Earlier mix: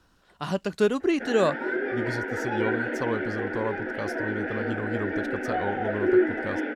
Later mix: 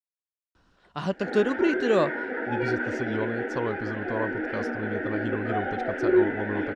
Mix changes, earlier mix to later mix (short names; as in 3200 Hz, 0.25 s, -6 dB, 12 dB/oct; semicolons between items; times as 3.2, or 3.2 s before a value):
speech: entry +0.55 s; master: add air absorption 79 m